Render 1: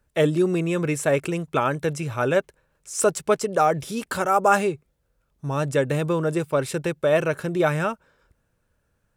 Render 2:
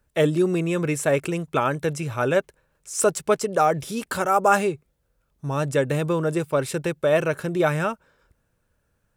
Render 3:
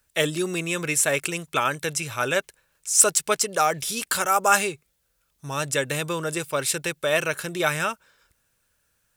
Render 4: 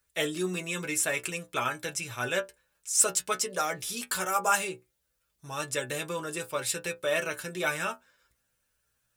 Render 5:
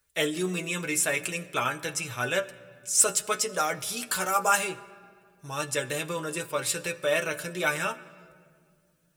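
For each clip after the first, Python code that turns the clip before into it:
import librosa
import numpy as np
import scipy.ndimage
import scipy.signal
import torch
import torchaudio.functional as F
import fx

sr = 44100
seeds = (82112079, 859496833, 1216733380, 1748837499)

y1 = fx.high_shelf(x, sr, hz=11000.0, db=3.0)
y2 = fx.tilt_shelf(y1, sr, db=-9.0, hz=1400.0)
y2 = y2 * librosa.db_to_amplitude(1.5)
y3 = fx.stiff_resonator(y2, sr, f0_hz=60.0, decay_s=0.23, stiffness=0.002)
y4 = fx.room_shoebox(y3, sr, seeds[0], volume_m3=3700.0, walls='mixed', distance_m=0.45)
y4 = y4 * librosa.db_to_amplitude(2.0)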